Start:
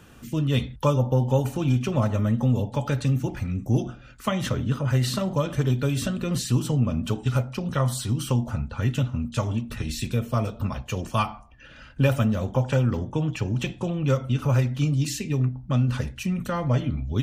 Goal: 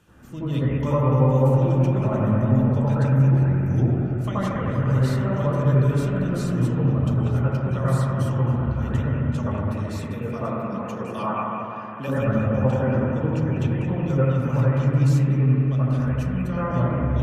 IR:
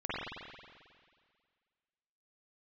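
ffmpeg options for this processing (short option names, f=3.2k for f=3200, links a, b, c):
-filter_complex "[0:a]asettb=1/sr,asplit=3[a][b][c];[a]atrim=end=9.674[d];[b]atrim=start=9.67:end=12.09,asetpts=PTS-STARTPTS,afade=t=in:d=0.004:c=qsin,afade=t=out:st=2.416:d=0.004:c=qsin,highpass=f=160:w=0.5412,highpass=f=160:w=1.3066[e];[c]atrim=start=12.086[f];[d][e]acrossfade=d=0.004:c1=hsin:c2=qsin[g];[g][f]acrossfade=d=0.004:c1=qsin:c2=hsin[h];[1:a]atrim=start_sample=2205,asetrate=26460,aresample=44100[i];[h][i]afir=irnorm=-1:irlink=0,volume=-8dB"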